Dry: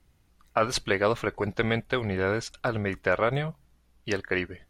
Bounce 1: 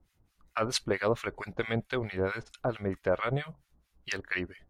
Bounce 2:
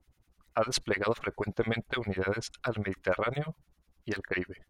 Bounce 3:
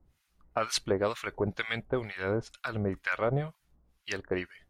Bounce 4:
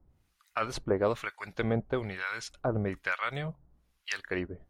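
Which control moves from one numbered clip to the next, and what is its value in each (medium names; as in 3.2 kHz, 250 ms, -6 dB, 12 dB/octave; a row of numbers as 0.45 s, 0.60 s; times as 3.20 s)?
harmonic tremolo, rate: 4.5 Hz, 10 Hz, 2.1 Hz, 1.1 Hz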